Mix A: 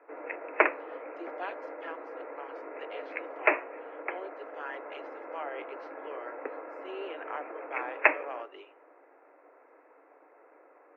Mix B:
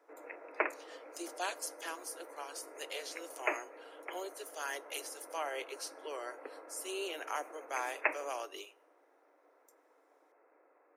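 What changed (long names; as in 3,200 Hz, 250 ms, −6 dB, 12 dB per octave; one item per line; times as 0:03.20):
speech: remove low-pass filter 2,400 Hz 24 dB per octave
background −9.5 dB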